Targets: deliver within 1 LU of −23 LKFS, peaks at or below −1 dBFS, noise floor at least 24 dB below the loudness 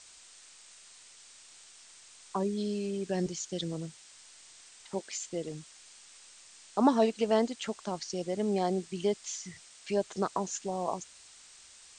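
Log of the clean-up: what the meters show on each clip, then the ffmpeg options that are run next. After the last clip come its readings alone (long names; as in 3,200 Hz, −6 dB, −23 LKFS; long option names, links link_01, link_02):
background noise floor −55 dBFS; target noise floor −57 dBFS; integrated loudness −32.5 LKFS; sample peak −12.5 dBFS; target loudness −23.0 LKFS
→ -af "afftdn=noise_reduction=6:noise_floor=-55"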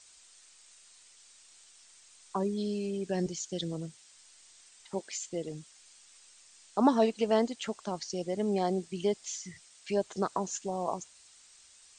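background noise floor −59 dBFS; integrated loudness −32.5 LKFS; sample peak −12.5 dBFS; target loudness −23.0 LKFS
→ -af "volume=9.5dB"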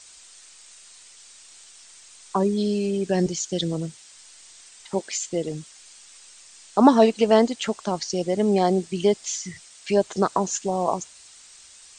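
integrated loudness −23.0 LKFS; sample peak −3.0 dBFS; background noise floor −49 dBFS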